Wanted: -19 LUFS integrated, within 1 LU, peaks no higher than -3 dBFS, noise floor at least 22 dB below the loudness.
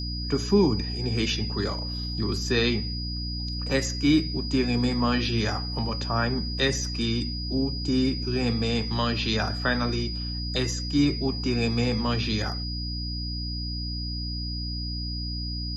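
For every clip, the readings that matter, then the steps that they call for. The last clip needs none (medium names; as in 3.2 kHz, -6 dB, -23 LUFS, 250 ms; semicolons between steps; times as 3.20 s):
hum 60 Hz; highest harmonic 300 Hz; hum level -30 dBFS; steady tone 4.9 kHz; tone level -34 dBFS; loudness -26.5 LUFS; peak level -9.0 dBFS; loudness target -19.0 LUFS
-> hum notches 60/120/180/240/300 Hz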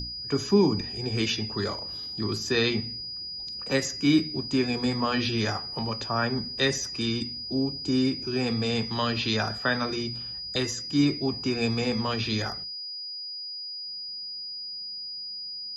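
hum not found; steady tone 4.9 kHz; tone level -34 dBFS
-> band-stop 4.9 kHz, Q 30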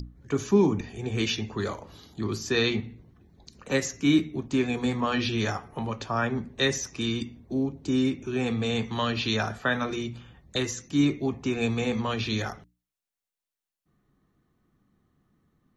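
steady tone not found; loudness -28.0 LUFS; peak level -10.0 dBFS; loudness target -19.0 LUFS
-> trim +9 dB; peak limiter -3 dBFS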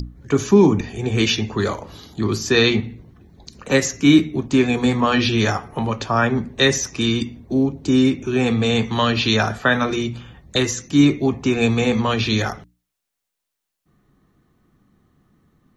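loudness -19.0 LUFS; peak level -3.0 dBFS; noise floor -80 dBFS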